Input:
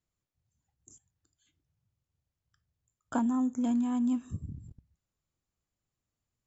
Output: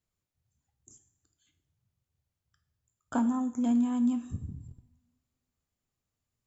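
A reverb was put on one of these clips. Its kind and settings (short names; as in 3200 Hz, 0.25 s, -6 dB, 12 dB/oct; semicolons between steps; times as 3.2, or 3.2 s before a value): two-slope reverb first 0.62 s, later 1.9 s, from -22 dB, DRR 8.5 dB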